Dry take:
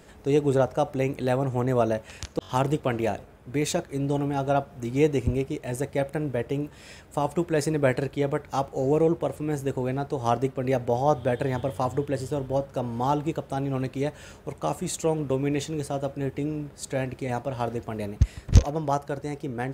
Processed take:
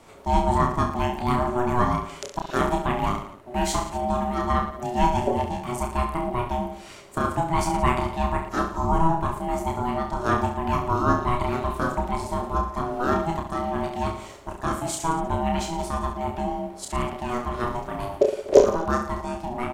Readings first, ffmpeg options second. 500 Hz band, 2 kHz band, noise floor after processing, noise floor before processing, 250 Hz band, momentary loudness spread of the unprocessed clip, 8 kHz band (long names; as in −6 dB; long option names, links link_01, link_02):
−0.5 dB, +3.5 dB, −43 dBFS, −49 dBFS, +0.5 dB, 8 LU, +1.5 dB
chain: -af "aeval=exprs='val(0)*sin(2*PI*490*n/s)':channel_layout=same,aecho=1:1:30|67.5|114.4|173|246.2:0.631|0.398|0.251|0.158|0.1,volume=2.5dB"